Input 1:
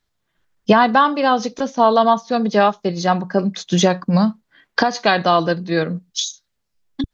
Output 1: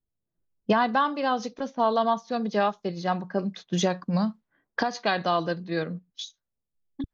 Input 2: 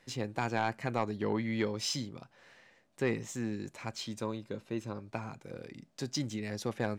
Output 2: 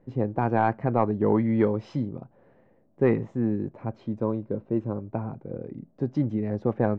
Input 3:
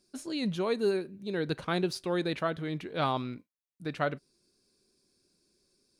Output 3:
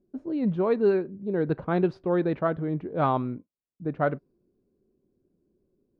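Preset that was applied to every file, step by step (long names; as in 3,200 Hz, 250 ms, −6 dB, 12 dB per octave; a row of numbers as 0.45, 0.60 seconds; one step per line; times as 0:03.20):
low-pass that shuts in the quiet parts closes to 480 Hz, open at −14.5 dBFS
loudness normalisation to −27 LKFS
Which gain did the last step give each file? −9.5, +10.5, +6.0 decibels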